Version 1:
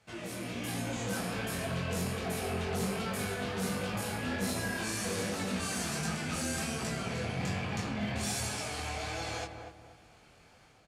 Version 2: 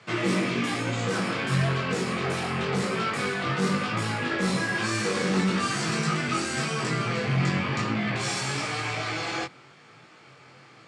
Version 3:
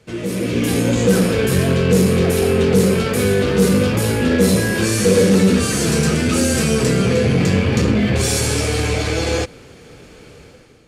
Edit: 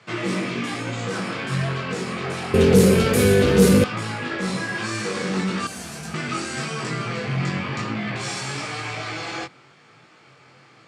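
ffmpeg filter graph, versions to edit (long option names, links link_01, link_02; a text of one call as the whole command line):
ffmpeg -i take0.wav -i take1.wav -i take2.wav -filter_complex "[1:a]asplit=3[link_01][link_02][link_03];[link_01]atrim=end=2.542[link_04];[2:a]atrim=start=2.538:end=3.842[link_05];[link_02]atrim=start=3.838:end=5.672[link_06];[0:a]atrim=start=5.668:end=6.142[link_07];[link_03]atrim=start=6.138[link_08];[link_04][link_05]acrossfade=duration=0.004:curve1=hsin:curve2=hsin[link_09];[link_09][link_06]acrossfade=duration=0.004:curve1=hsin:curve2=hsin[link_10];[link_10][link_07]acrossfade=duration=0.004:curve1=hsin:curve2=hsin[link_11];[link_11][link_08]acrossfade=duration=0.004:curve1=hsin:curve2=hsin" out.wav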